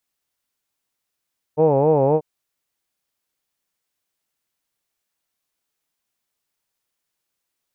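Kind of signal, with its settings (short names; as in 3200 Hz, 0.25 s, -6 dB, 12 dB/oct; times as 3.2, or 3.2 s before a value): formant vowel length 0.64 s, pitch 148 Hz, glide -0.5 st, vibrato 3.8 Hz, vibrato depth 1.45 st, F1 500 Hz, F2 870 Hz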